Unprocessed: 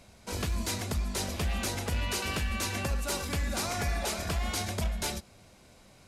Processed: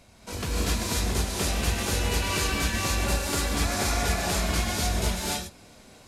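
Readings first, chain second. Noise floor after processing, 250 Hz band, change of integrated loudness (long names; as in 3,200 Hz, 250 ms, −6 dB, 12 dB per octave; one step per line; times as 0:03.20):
−52 dBFS, +6.0 dB, +5.5 dB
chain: reverb whose tail is shaped and stops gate 310 ms rising, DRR −5 dB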